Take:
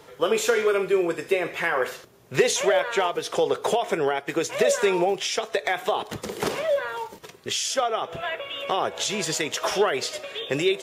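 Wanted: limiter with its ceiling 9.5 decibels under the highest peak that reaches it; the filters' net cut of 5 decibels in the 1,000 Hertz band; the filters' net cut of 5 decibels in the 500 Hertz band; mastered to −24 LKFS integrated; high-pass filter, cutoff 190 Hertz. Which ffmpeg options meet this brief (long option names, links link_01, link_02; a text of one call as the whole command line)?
ffmpeg -i in.wav -af "highpass=190,equalizer=frequency=500:width_type=o:gain=-5,equalizer=frequency=1000:width_type=o:gain=-5,volume=6.5dB,alimiter=limit=-14dB:level=0:latency=1" out.wav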